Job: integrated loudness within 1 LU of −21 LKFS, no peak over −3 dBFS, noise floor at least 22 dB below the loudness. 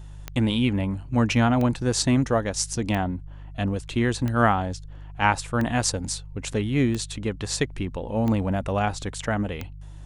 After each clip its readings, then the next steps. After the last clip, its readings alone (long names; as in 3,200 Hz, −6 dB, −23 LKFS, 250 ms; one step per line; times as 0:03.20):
number of clicks 8; mains hum 50 Hz; hum harmonics up to 150 Hz; level of the hum −38 dBFS; integrated loudness −25.0 LKFS; sample peak −4.5 dBFS; target loudness −21.0 LKFS
→ click removal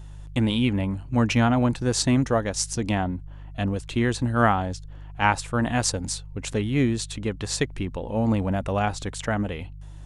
number of clicks 0; mains hum 50 Hz; hum harmonics up to 150 Hz; level of the hum −38 dBFS
→ hum removal 50 Hz, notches 3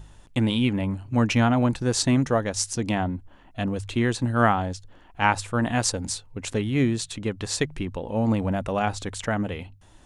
mains hum none found; integrated loudness −25.0 LKFS; sample peak −4.0 dBFS; target loudness −21.0 LKFS
→ level +4 dB
brickwall limiter −3 dBFS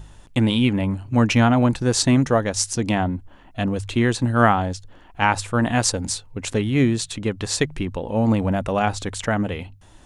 integrated loudness −21.0 LKFS; sample peak −3.0 dBFS; background noise floor −48 dBFS